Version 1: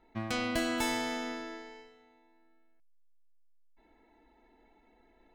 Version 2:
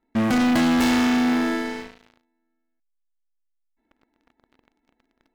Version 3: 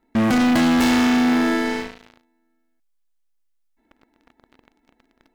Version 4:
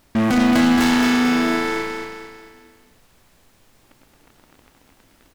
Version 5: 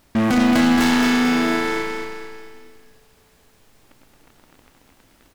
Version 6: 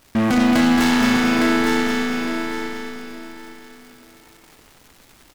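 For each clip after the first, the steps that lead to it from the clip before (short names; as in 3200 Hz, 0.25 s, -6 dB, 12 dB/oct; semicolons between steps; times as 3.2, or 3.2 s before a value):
fifteen-band EQ 250 Hz +12 dB, 1600 Hz +5 dB, 10000 Hz -9 dB; sample leveller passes 5; gain -2.5 dB
limiter -21.5 dBFS, peak gain reduction 5 dB; gain +7 dB
added noise pink -58 dBFS; on a send: feedback echo 0.223 s, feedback 44%, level -5 dB
Schroeder reverb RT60 3.2 s, combs from 30 ms, DRR 17.5 dB
crackle 400/s -38 dBFS; feedback echo 0.859 s, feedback 24%, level -5.5 dB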